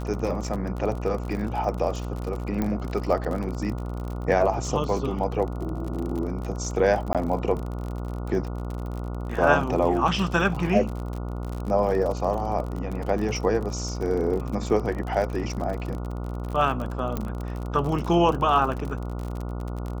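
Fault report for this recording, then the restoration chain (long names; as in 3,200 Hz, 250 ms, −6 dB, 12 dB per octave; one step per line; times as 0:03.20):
mains buzz 60 Hz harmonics 24 −31 dBFS
surface crackle 43 per second −30 dBFS
0:02.62: click −14 dBFS
0:07.13–0:07.15: drop-out 17 ms
0:17.17: click −14 dBFS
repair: click removal
hum removal 60 Hz, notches 24
repair the gap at 0:07.13, 17 ms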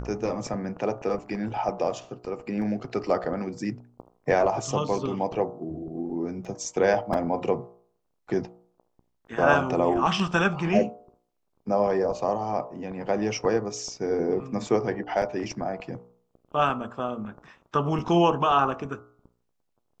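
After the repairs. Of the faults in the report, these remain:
0:02.62: click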